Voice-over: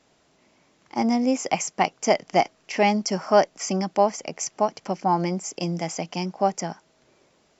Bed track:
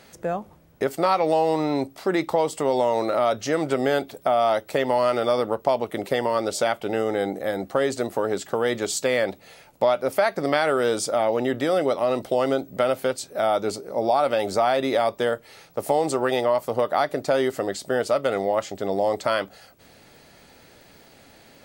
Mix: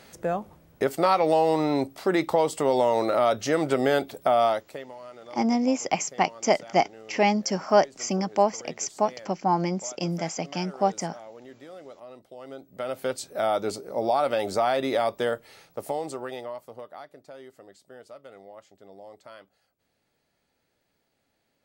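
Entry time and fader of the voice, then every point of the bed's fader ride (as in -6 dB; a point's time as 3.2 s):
4.40 s, -1.5 dB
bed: 4.45 s -0.5 dB
4.95 s -22.5 dB
12.35 s -22.5 dB
13.14 s -3 dB
15.47 s -3 dB
17.21 s -23.5 dB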